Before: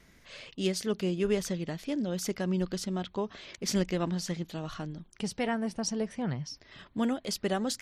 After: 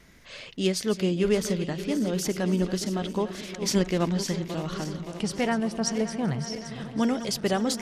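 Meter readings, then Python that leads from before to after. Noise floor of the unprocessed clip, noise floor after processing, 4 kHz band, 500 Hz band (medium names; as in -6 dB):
-61 dBFS, -44 dBFS, +5.0 dB, +5.0 dB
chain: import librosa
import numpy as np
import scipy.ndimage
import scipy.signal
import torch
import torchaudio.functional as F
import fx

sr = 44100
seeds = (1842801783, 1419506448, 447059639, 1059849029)

y = fx.reverse_delay_fb(x, sr, ms=285, feedback_pct=79, wet_db=-12.0)
y = F.gain(torch.from_numpy(y), 4.5).numpy()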